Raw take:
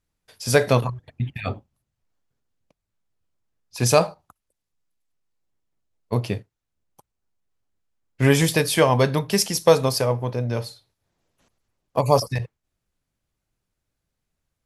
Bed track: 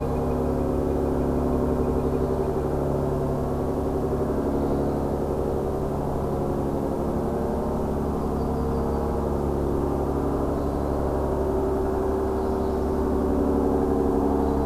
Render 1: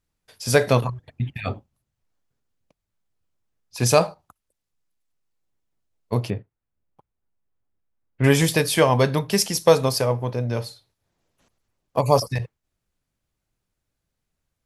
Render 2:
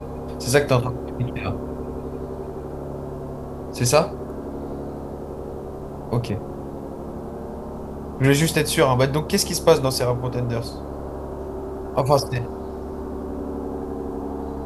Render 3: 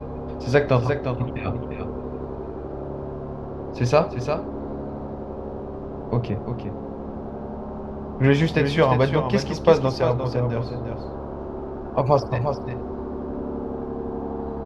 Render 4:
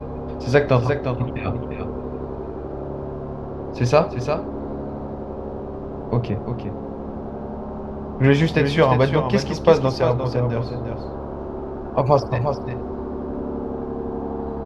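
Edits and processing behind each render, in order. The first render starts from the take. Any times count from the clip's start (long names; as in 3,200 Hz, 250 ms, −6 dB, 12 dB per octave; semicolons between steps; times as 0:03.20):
0:06.30–0:08.24: high-frequency loss of the air 480 metres
mix in bed track −7 dB
high-frequency loss of the air 230 metres; on a send: single-tap delay 350 ms −7.5 dB
level +2 dB; brickwall limiter −1 dBFS, peak gain reduction 0.5 dB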